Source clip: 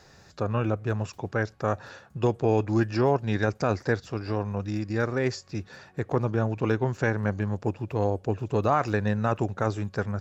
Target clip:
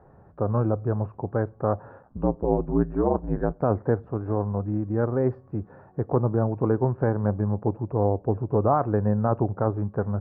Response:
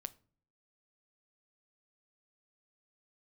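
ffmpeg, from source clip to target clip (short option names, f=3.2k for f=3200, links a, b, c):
-filter_complex "[0:a]asplit=3[a][b][c];[a]afade=t=out:st=2.02:d=0.02[d];[b]aeval=exprs='val(0)*sin(2*PI*59*n/s)':c=same,afade=t=in:st=2.02:d=0.02,afade=t=out:st=3.61:d=0.02[e];[c]afade=t=in:st=3.61:d=0.02[f];[d][e][f]amix=inputs=3:normalize=0,lowpass=f=1.1k:w=0.5412,lowpass=f=1.1k:w=1.3066,asplit=2[g][h];[1:a]atrim=start_sample=2205,asetrate=41454,aresample=44100[i];[h][i]afir=irnorm=-1:irlink=0,volume=-4.5dB[j];[g][j]amix=inputs=2:normalize=0"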